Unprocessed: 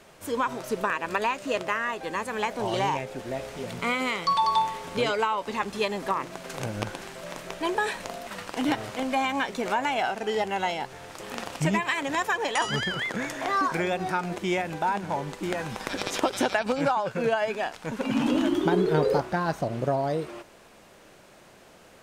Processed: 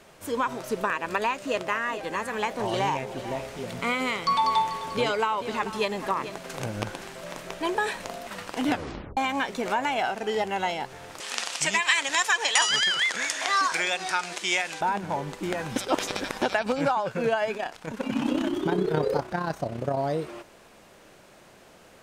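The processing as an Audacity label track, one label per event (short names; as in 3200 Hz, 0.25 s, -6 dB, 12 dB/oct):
1.280000	6.380000	echo 0.439 s -12.5 dB
8.690000	8.690000	tape stop 0.48 s
11.200000	14.810000	weighting filter ITU-R 468
15.760000	16.420000	reverse
17.570000	19.970000	AM modulator 32 Hz, depth 40%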